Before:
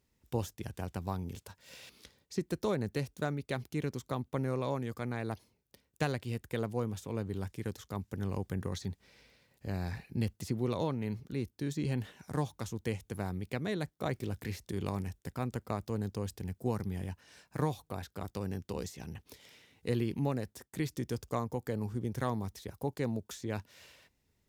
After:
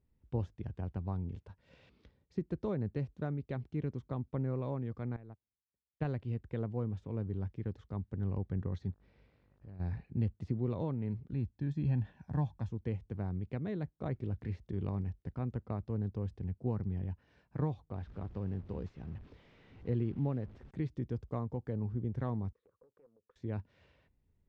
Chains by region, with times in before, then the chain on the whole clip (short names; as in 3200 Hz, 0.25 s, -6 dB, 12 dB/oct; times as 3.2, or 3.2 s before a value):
5.16–6.05 Gaussian blur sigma 1.6 samples + upward expander 2.5:1, over -47 dBFS
8.9–9.79 compressor 2:1, threshold -56 dBFS + buzz 50 Hz, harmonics 35, -71 dBFS -3 dB/oct
11.33–12.69 block floating point 7-bit + comb 1.2 ms, depth 54%
17.95–20.71 delta modulation 64 kbps, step -46 dBFS + air absorption 53 m
22.53–23.36 compressor 10:1, threshold -45 dBFS + double band-pass 760 Hz, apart 1.2 oct + Doppler distortion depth 0.21 ms
whole clip: LPF 3500 Hz 12 dB/oct; tilt -3 dB/oct; gain -8 dB